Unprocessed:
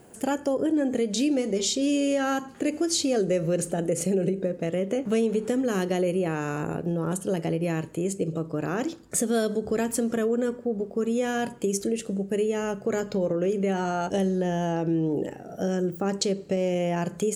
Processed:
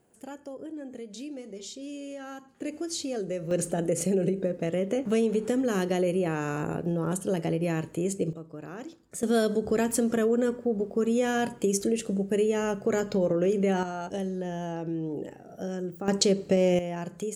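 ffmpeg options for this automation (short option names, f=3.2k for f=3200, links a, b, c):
-af "asetnsamples=n=441:p=0,asendcmd='2.61 volume volume -8dB;3.51 volume volume -1dB;8.33 volume volume -12dB;9.23 volume volume 0.5dB;13.83 volume volume -7dB;16.08 volume volume 3dB;16.79 volume volume -7dB',volume=-15dB"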